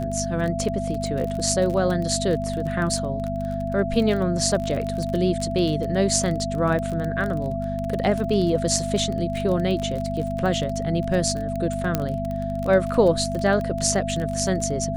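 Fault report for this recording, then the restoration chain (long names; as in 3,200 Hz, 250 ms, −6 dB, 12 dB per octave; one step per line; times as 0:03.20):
surface crackle 25 per second −26 dBFS
mains hum 50 Hz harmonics 5 −29 dBFS
whistle 670 Hz −28 dBFS
0:11.95: click −7 dBFS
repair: click removal
hum removal 50 Hz, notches 5
notch filter 670 Hz, Q 30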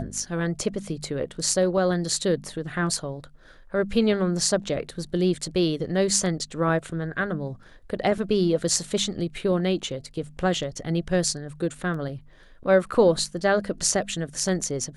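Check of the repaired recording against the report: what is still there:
0:11.95: click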